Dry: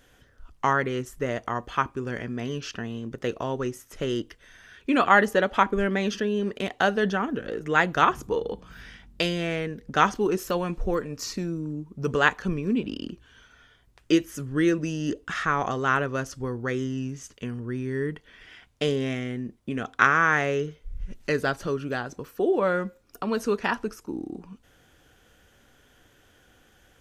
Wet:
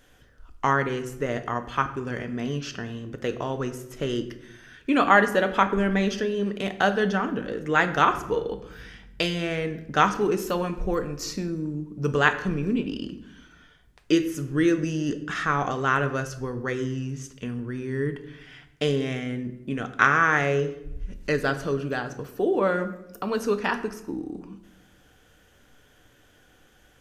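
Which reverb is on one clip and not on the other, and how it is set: shoebox room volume 260 m³, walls mixed, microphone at 0.42 m

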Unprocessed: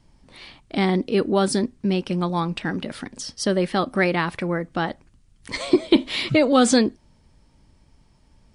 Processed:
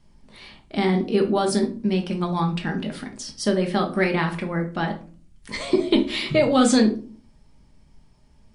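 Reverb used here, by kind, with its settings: shoebox room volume 280 m³, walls furnished, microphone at 1.3 m; gain -3 dB

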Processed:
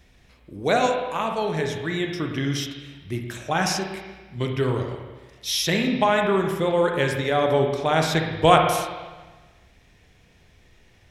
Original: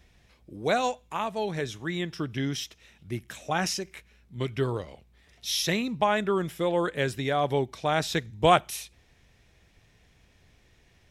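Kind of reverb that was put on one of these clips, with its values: spring tank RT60 1.3 s, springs 31/50/58 ms, chirp 25 ms, DRR 2.5 dB; gain +3.5 dB

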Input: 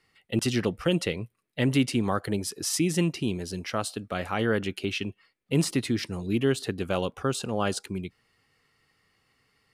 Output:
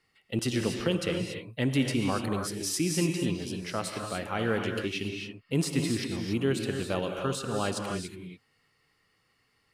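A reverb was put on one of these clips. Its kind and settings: non-linear reverb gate 0.31 s rising, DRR 3 dB; gain -3.5 dB

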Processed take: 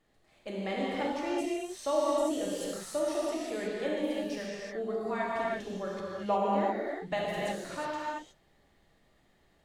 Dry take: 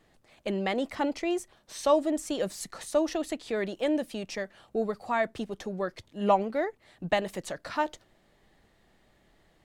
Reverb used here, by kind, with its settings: non-linear reverb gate 0.39 s flat, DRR -6 dB; gain -9.5 dB

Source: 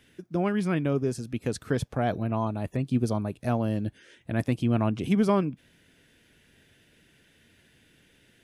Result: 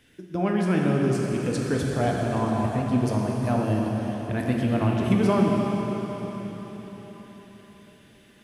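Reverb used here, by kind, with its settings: plate-style reverb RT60 4.7 s, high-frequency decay 1×, DRR -2 dB

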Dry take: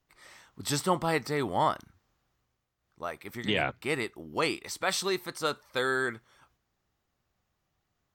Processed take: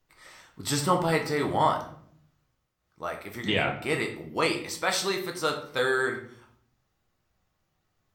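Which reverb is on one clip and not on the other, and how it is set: shoebox room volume 84 m³, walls mixed, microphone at 0.58 m; gain +1 dB

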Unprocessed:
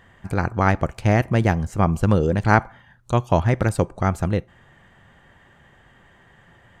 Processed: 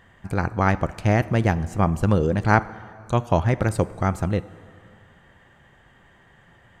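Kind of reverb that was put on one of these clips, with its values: plate-style reverb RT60 2.3 s, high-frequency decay 0.75×, DRR 17 dB; gain -1.5 dB

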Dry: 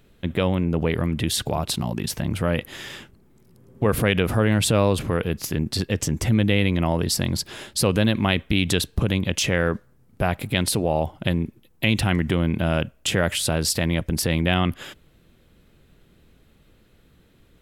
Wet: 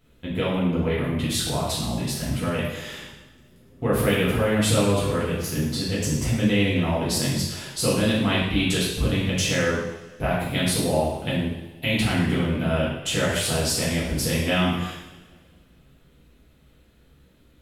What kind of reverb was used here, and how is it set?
two-slope reverb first 0.85 s, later 2.2 s, DRR -8.5 dB; gain -9.5 dB

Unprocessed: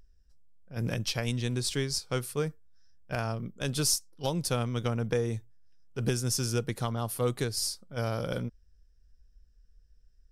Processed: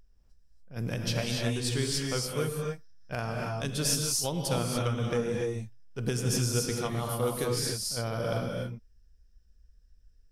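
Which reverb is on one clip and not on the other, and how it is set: non-linear reverb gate 0.31 s rising, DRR -0.5 dB; gain -2 dB

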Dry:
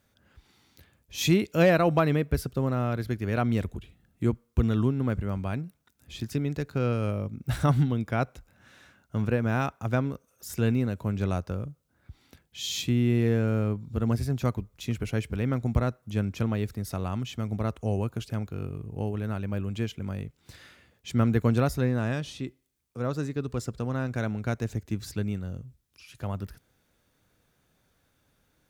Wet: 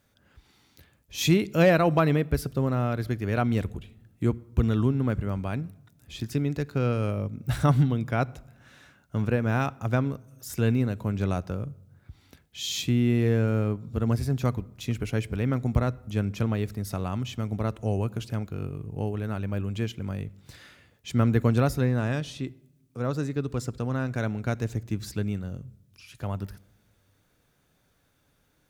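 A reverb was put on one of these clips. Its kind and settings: shoebox room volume 3600 m³, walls furnished, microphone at 0.33 m; gain +1 dB

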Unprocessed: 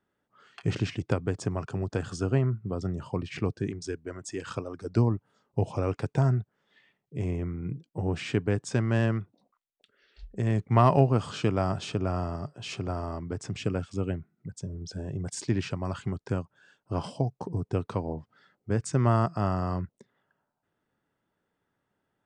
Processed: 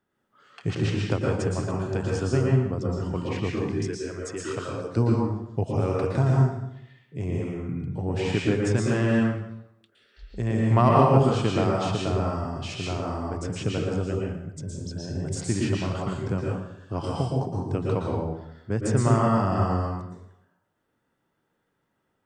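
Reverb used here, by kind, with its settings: plate-style reverb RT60 0.79 s, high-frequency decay 0.85×, pre-delay 0.105 s, DRR -2.5 dB

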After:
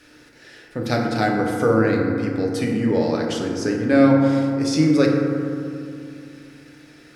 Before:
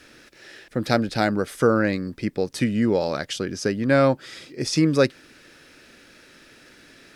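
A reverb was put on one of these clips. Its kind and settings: FDN reverb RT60 2.5 s, low-frequency decay 1.3×, high-frequency decay 0.3×, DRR -1.5 dB; gain -3 dB

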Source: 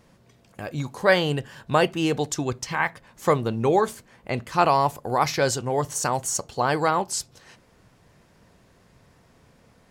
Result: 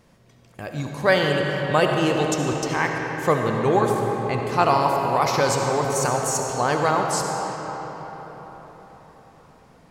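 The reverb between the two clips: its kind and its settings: digital reverb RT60 4.9 s, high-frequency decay 0.6×, pre-delay 30 ms, DRR 1 dB

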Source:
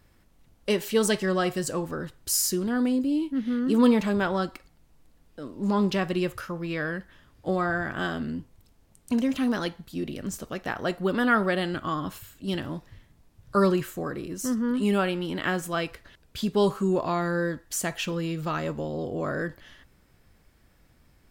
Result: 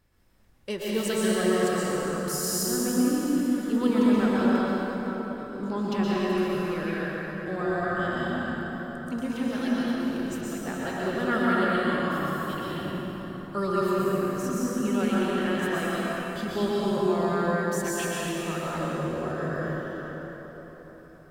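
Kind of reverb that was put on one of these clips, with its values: plate-style reverb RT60 4.6 s, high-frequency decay 0.6×, pre-delay 0.105 s, DRR -7.5 dB; gain -8 dB

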